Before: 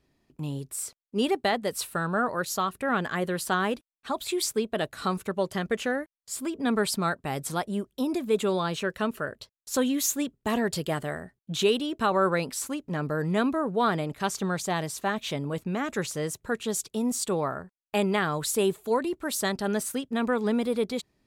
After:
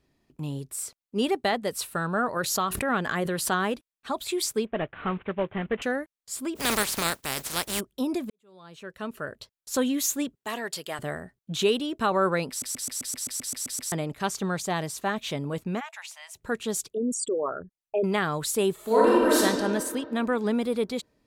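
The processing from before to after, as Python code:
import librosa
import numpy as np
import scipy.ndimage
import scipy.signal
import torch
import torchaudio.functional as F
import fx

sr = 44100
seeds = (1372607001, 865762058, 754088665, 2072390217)

y = fx.pre_swell(x, sr, db_per_s=40.0, at=(2.36, 3.51))
y = fx.cvsd(y, sr, bps=16000, at=(4.66, 5.82))
y = fx.spec_flatten(y, sr, power=0.32, at=(6.55, 7.79), fade=0.02)
y = fx.highpass(y, sr, hz=980.0, slope=6, at=(10.35, 10.99))
y = fx.cheby_ripple_highpass(y, sr, hz=640.0, ripple_db=9, at=(15.79, 16.35), fade=0.02)
y = fx.envelope_sharpen(y, sr, power=3.0, at=(16.93, 18.04))
y = fx.reverb_throw(y, sr, start_s=18.74, length_s=0.62, rt60_s=2.1, drr_db=-8.5)
y = fx.edit(y, sr, fx.fade_in_span(start_s=8.3, length_s=1.09, curve='qua'),
    fx.stutter_over(start_s=12.49, slice_s=0.13, count=11), tone=tone)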